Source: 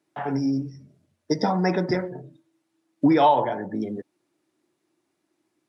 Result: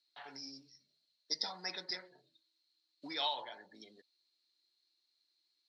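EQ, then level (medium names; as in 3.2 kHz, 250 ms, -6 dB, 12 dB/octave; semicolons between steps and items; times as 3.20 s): band-pass filter 4.2 kHz, Q 18; +17.5 dB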